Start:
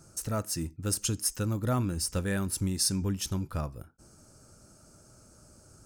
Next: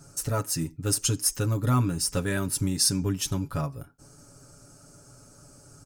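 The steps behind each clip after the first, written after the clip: comb 7.1 ms, depth 77%; gain +2.5 dB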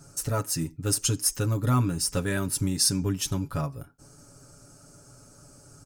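nothing audible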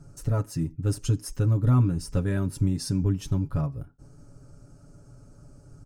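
tilt -3 dB/oct; gain -5 dB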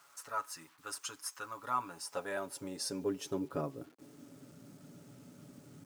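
bit-crush 10-bit; high-pass sweep 1100 Hz -> 210 Hz, 1.48–4.62; gain -3 dB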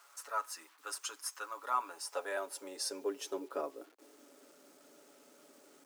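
HPF 370 Hz 24 dB/oct; gain +1 dB

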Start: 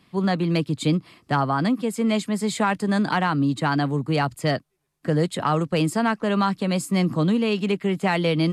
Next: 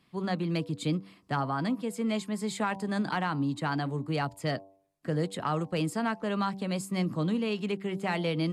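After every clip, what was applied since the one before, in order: de-hum 97.05 Hz, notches 11; gain -8 dB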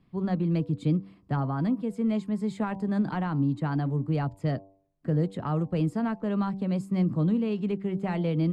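tilt -3.5 dB/oct; gain -3.5 dB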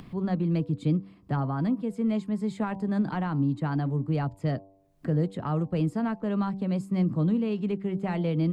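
upward compressor, threshold -32 dBFS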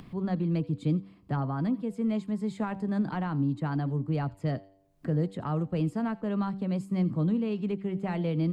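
thin delay 85 ms, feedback 32%, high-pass 2000 Hz, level -19 dB; gain -2 dB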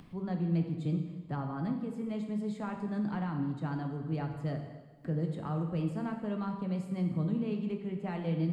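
plate-style reverb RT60 1.3 s, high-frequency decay 0.95×, DRR 3.5 dB; gain -6 dB

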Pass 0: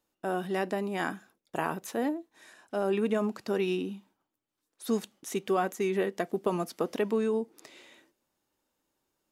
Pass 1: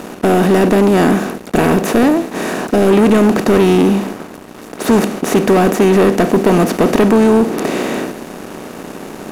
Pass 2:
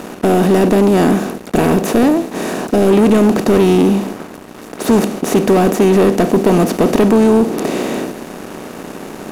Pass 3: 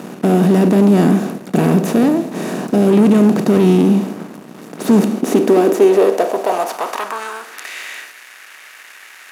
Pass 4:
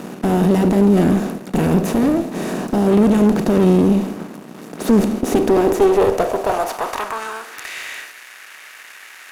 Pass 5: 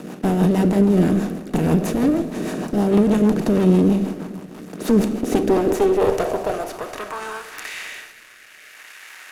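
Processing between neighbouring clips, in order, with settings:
per-bin compression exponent 0.4; low shelf 330 Hz +11 dB; sample leveller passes 3; gain +1 dB
dynamic EQ 1700 Hz, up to -4 dB, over -31 dBFS, Q 0.94
on a send at -13.5 dB: reverb RT60 0.85 s, pre-delay 22 ms; on the sum: high-pass sweep 160 Hz -> 1900 Hz, 4.81–7.7; gain -4.5 dB
one diode to ground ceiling -15 dBFS
rotary speaker horn 6.3 Hz, later 0.65 Hz, at 5.31; shoebox room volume 3900 m³, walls mixed, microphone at 0.5 m; gain -1 dB

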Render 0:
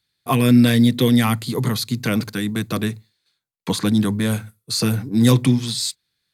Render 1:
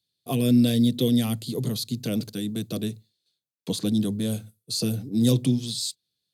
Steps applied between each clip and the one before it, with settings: HPF 97 Hz; band shelf 1400 Hz -14 dB; gain -5.5 dB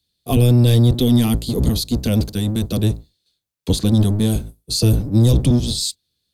octaver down 1 oct, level +3 dB; limiter -13.5 dBFS, peak gain reduction 7.5 dB; gain +7 dB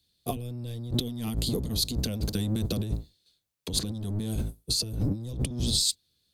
negative-ratio compressor -24 dBFS, ratio -1; gain -6.5 dB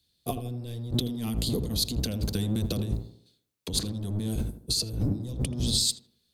tape echo 81 ms, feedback 49%, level -8 dB, low-pass 1100 Hz

